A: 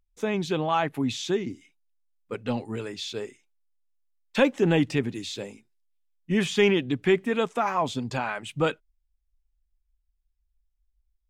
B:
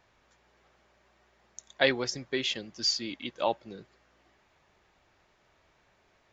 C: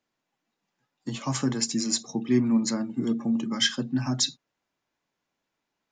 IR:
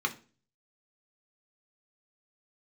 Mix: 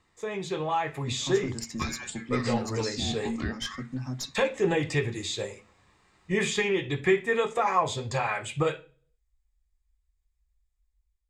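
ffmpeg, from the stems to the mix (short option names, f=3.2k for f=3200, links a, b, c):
-filter_complex "[0:a]equalizer=f=250:t=o:w=1:g=-12,equalizer=f=500:t=o:w=1:g=10,equalizer=f=2k:t=o:w=1:g=8,equalizer=f=4k:t=o:w=1:g=7,equalizer=f=8k:t=o:w=1:g=9,acompressor=threshold=-18dB:ratio=6,volume=-11dB,asplit=2[a][b];[b]volume=-6dB[c];[1:a]equalizer=f=6.3k:t=o:w=0.77:g=5.5,acompressor=threshold=-39dB:ratio=3,aeval=exprs='val(0)*sin(2*PI*1200*n/s+1200*0.65/0.49*sin(2*PI*0.49*n/s))':c=same,volume=-0.5dB,asplit=2[d][e];[e]volume=-8.5dB[f];[2:a]aeval=exprs='(tanh(5.01*val(0)+0.5)-tanh(0.5))/5.01':c=same,volume=-15dB[g];[3:a]atrim=start_sample=2205[h];[c][f]amix=inputs=2:normalize=0[i];[i][h]afir=irnorm=-1:irlink=0[j];[a][d][g][j]amix=inputs=4:normalize=0,equalizer=f=81:w=0.67:g=9.5,dynaudnorm=f=330:g=5:m=6dB"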